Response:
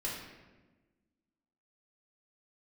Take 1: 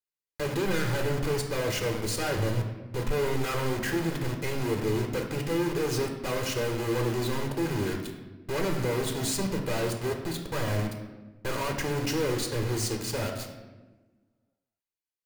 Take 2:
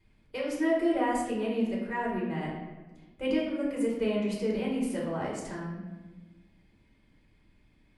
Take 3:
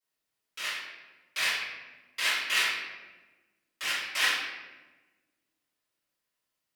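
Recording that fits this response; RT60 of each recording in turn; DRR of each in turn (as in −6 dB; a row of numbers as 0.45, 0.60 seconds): 2; 1.2, 1.2, 1.2 seconds; 2.5, −5.0, −13.0 decibels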